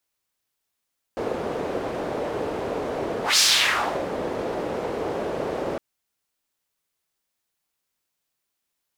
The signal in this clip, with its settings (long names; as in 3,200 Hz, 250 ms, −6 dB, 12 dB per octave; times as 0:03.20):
pass-by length 4.61 s, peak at 0:02.21, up 0.16 s, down 0.70 s, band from 490 Hz, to 5,100 Hz, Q 1.8, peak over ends 11 dB